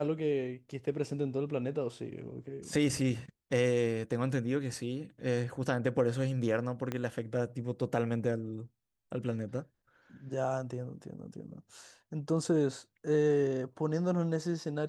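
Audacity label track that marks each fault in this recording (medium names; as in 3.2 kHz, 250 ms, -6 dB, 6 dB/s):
6.920000	6.920000	pop -20 dBFS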